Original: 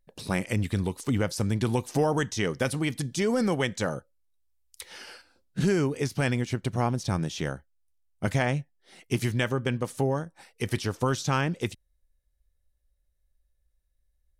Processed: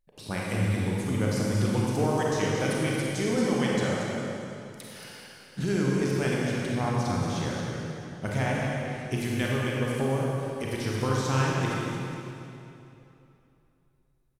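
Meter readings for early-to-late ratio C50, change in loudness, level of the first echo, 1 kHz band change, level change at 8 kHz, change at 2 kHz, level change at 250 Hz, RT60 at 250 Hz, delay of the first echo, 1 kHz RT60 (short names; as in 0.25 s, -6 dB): -3.5 dB, 0.0 dB, -7.5 dB, +1.0 dB, 0.0 dB, +0.5 dB, +1.0 dB, 2.9 s, 0.228 s, 2.8 s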